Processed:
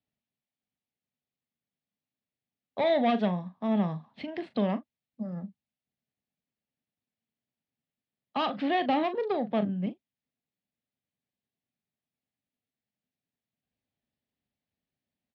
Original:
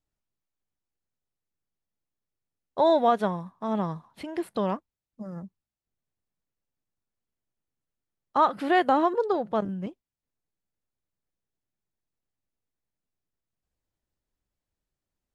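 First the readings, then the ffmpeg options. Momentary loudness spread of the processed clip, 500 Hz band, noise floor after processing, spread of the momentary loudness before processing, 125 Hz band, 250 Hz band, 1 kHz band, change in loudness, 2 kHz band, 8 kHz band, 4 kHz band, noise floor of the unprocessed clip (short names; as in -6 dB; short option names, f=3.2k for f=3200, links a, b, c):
13 LU, -4.0 dB, under -85 dBFS, 18 LU, +2.0 dB, +0.5 dB, -6.5 dB, -3.5 dB, -3.5 dB, n/a, +1.5 dB, under -85 dBFS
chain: -filter_complex "[0:a]acrossover=split=280|2700[a][b][c];[b]asoftclip=type=tanh:threshold=-21dB[d];[a][d][c]amix=inputs=3:normalize=0,highpass=130,equalizer=f=240:t=q:w=4:g=6,equalizer=f=340:t=q:w=4:g=-8,equalizer=f=490:t=q:w=4:g=-4,equalizer=f=1k:t=q:w=4:g=-9,equalizer=f=1.4k:t=q:w=4:g=-9,lowpass=f=4.1k:w=0.5412,lowpass=f=4.1k:w=1.3066,asplit=2[e][f];[f]adelay=39,volume=-12dB[g];[e][g]amix=inputs=2:normalize=0,volume=2dB"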